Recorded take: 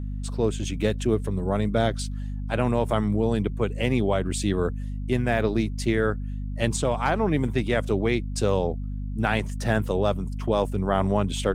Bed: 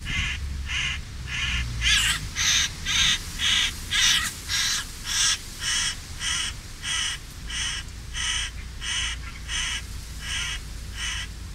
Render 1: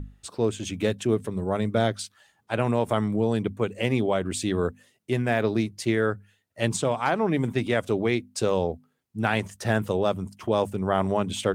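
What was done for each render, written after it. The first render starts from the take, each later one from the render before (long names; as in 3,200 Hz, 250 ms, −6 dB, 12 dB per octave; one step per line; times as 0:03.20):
mains-hum notches 50/100/150/200/250 Hz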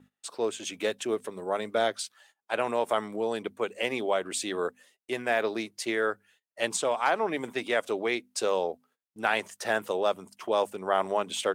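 high-pass filter 470 Hz 12 dB per octave
noise gate −60 dBFS, range −17 dB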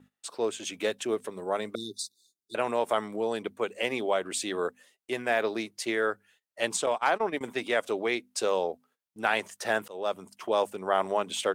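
0:01.75–0:02.55: linear-phase brick-wall band-stop 430–3,500 Hz
0:06.86–0:07.41: noise gate −32 dBFS, range −20 dB
0:09.88–0:10.34: fade in equal-power, from −22.5 dB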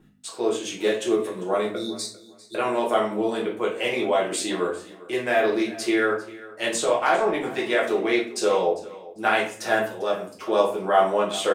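repeating echo 398 ms, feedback 20%, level −19 dB
rectangular room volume 45 cubic metres, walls mixed, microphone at 0.93 metres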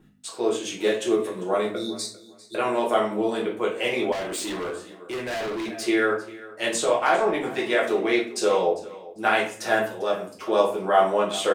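0:04.12–0:05.83: gain into a clipping stage and back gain 27.5 dB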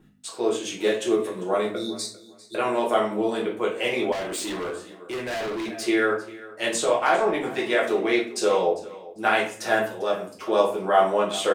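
no processing that can be heard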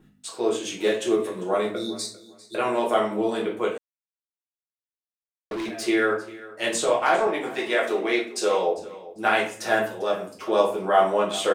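0:03.78–0:05.51: silence
0:07.27–0:08.78: high-pass filter 290 Hz 6 dB per octave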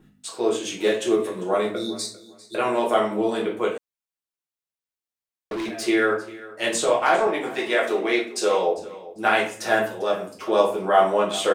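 level +1.5 dB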